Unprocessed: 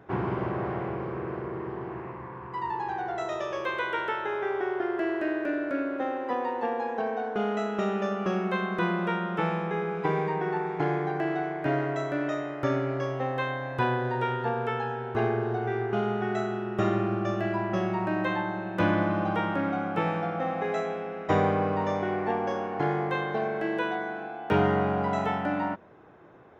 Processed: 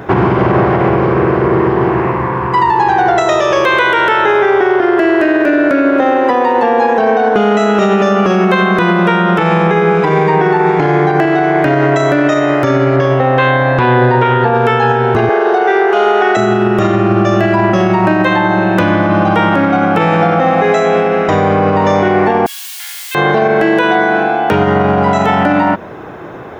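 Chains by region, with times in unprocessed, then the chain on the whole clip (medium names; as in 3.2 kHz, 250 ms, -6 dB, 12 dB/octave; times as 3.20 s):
12.96–14.55 s: distance through air 140 m + loudspeaker Doppler distortion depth 0.12 ms
15.29–16.37 s: high-pass 400 Hz 24 dB/octave + band-stop 2.4 kHz, Q 26
22.46–23.15 s: distance through air 280 m + word length cut 8-bit, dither triangular + ladder high-pass 2.5 kHz, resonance 40%
whole clip: treble shelf 4.6 kHz +5 dB; compression, threshold -29 dBFS; loudness maximiser +26 dB; trim -1.5 dB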